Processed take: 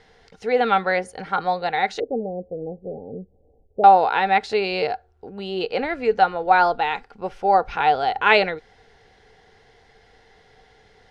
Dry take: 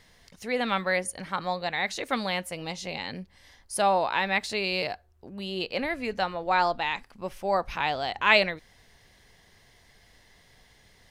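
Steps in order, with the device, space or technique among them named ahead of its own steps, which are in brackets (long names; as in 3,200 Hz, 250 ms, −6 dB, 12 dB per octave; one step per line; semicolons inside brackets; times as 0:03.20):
0:02.00–0:03.84: Butterworth low-pass 620 Hz 48 dB per octave
inside a cardboard box (low-pass filter 5,000 Hz 12 dB per octave; hollow resonant body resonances 450/770/1,400 Hz, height 14 dB, ringing for 40 ms)
level +1.5 dB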